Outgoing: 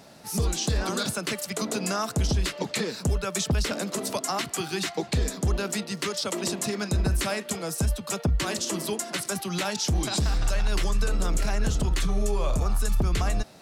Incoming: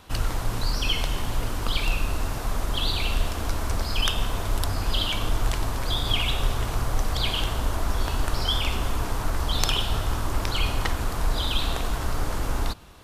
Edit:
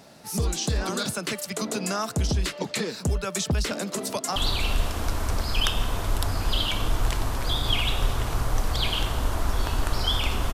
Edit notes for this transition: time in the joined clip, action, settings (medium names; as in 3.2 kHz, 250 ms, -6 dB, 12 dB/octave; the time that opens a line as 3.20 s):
outgoing
4.06–4.36 s: echo throw 180 ms, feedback 60%, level -11.5 dB
4.36 s: go over to incoming from 2.77 s